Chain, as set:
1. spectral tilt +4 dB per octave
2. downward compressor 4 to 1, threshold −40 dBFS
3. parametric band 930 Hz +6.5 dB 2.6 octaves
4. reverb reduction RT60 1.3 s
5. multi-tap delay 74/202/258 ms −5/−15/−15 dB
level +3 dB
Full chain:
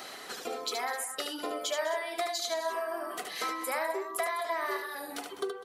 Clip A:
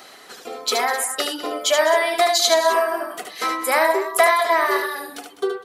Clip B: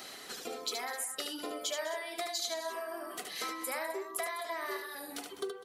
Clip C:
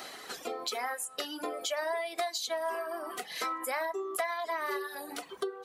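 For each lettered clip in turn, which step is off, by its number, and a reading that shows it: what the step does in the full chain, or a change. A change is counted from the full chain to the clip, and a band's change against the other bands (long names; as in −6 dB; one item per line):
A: 2, average gain reduction 10.0 dB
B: 3, 8 kHz band +4.0 dB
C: 5, echo-to-direct ratio −4.0 dB to none audible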